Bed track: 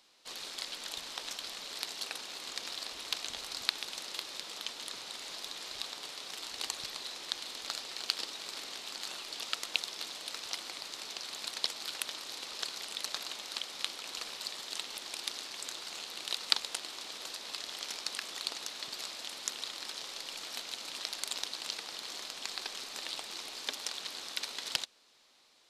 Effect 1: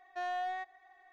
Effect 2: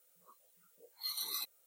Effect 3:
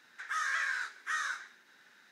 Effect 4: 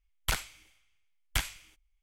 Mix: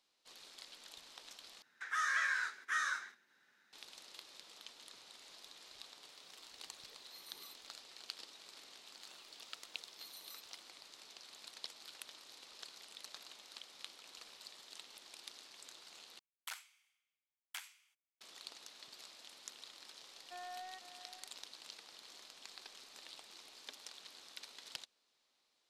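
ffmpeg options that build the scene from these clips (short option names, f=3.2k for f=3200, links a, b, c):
-filter_complex "[2:a]asplit=2[a][b];[0:a]volume=-14dB[c];[3:a]agate=range=-9dB:threshold=-58dB:ratio=16:release=100:detection=peak[d];[a]tiltshelf=f=970:g=6[e];[4:a]highpass=f=840:w=0.5412,highpass=f=840:w=1.3066[f];[1:a]asplit=2[g][h];[h]adelay=501.5,volume=-11dB,highshelf=f=4k:g=-11.3[i];[g][i]amix=inputs=2:normalize=0[j];[c]asplit=3[k][l][m];[k]atrim=end=1.624[n];[d]atrim=end=2.11,asetpts=PTS-STARTPTS,volume=-1.5dB[o];[l]atrim=start=3.726:end=16.194[p];[f]atrim=end=2.02,asetpts=PTS-STARTPTS,volume=-14.5dB[q];[m]atrim=start=18.206[r];[e]atrim=end=1.66,asetpts=PTS-STARTPTS,volume=-11.5dB,afade=t=in:d=0.004:c=hsin,afade=t=out:st=1.656:d=0.004:c=hsin,adelay=6090[s];[b]atrim=end=1.66,asetpts=PTS-STARTPTS,volume=-15.5dB,afade=t=in:d=0.004:c=hsin,afade=t=out:st=1.656:d=0.004:c=hsin,adelay=8960[t];[j]atrim=end=1.12,asetpts=PTS-STARTPTS,volume=-12.5dB,afade=t=in:d=0.004:c=hsin,afade=t=out:st=1.116:d=0.004:c=hsin,adelay=20150[u];[n][o]acrossfade=d=0.004:c1=hsin:c2=hsin[v];[v][p]acrossfade=d=0.004:c1=hsin:c2=hsin[w];[w][q]acrossfade=d=0.004:c1=hsin:c2=hsin[x];[x][r]acrossfade=d=0.004:c1=hsin:c2=hsin[y];[y][s][t][u]amix=inputs=4:normalize=0"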